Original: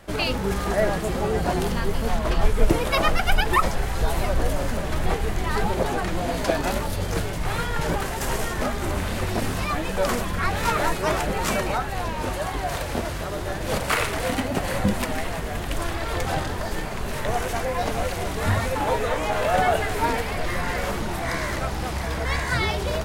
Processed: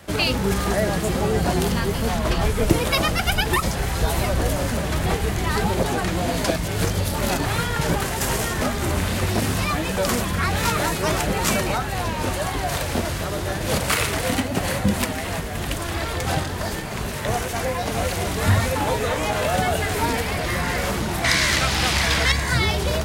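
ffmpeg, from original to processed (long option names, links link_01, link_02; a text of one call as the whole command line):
ffmpeg -i in.wav -filter_complex "[0:a]asplit=3[link_01][link_02][link_03];[link_01]afade=type=out:start_time=14.2:duration=0.02[link_04];[link_02]tremolo=f=3:d=0.32,afade=type=in:start_time=14.2:duration=0.02,afade=type=out:start_time=18:duration=0.02[link_05];[link_03]afade=type=in:start_time=18:duration=0.02[link_06];[link_04][link_05][link_06]amix=inputs=3:normalize=0,asettb=1/sr,asplit=3[link_07][link_08][link_09];[link_07]atrim=end=21.244[link_10];[link_08]atrim=start=21.24:end=22.32,asetpts=PTS-STARTPTS,afade=type=in:duration=0.004:curve=qsin,afade=type=out:start_time=1.076:duration=0.004:curve=qsin,equalizer=frequency=3000:width=0.36:gain=12.5[link_11];[link_09]atrim=start=22.316[link_12];[link_10][link_11]acrossfade=duration=0.004:curve1=hsin:curve2=qsin[link_13];[link_13][link_12]acrossfade=duration=0.004:curve1=qsin:curve2=hsin,asplit=3[link_14][link_15][link_16];[link_14]atrim=end=6.562[link_17];[link_15]atrim=start=6.558:end=7.452,asetpts=PTS-STARTPTS,areverse[link_18];[link_16]atrim=start=7.448[link_19];[link_17][link_18]acrossfade=duration=0.004:curve1=hsin:curve2=hsin[link_20];[link_20][link_19]acrossfade=duration=0.004:curve1=hsin:curve2=hsin,highpass=66,equalizer=frequency=730:width=0.31:gain=-5,acrossover=split=360|3000[link_21][link_22][link_23];[link_22]acompressor=threshold=-28dB:ratio=6[link_24];[link_21][link_24][link_23]amix=inputs=3:normalize=0,volume=7dB" out.wav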